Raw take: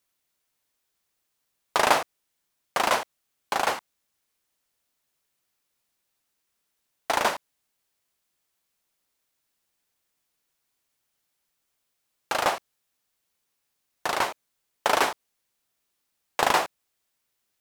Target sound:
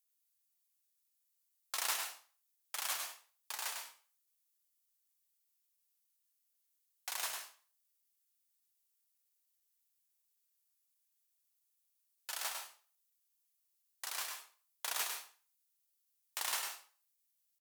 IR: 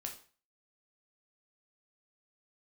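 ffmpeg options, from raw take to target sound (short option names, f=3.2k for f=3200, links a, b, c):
-filter_complex "[0:a]aderivative,asetrate=48091,aresample=44100,atempo=0.917004,asplit=2[a][b];[1:a]atrim=start_sample=2205,adelay=101[c];[b][c]afir=irnorm=-1:irlink=0,volume=-1.5dB[d];[a][d]amix=inputs=2:normalize=0,volume=-5.5dB"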